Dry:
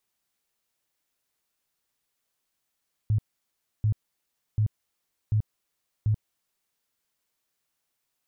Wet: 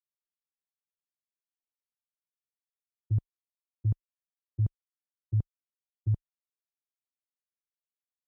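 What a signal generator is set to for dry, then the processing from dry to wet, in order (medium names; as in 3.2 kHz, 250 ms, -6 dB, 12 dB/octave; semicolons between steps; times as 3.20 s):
tone bursts 107 Hz, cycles 9, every 0.74 s, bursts 5, -19.5 dBFS
gate -25 dBFS, range -31 dB; high-pass 220 Hz 6 dB/octave; tilt EQ -2 dB/octave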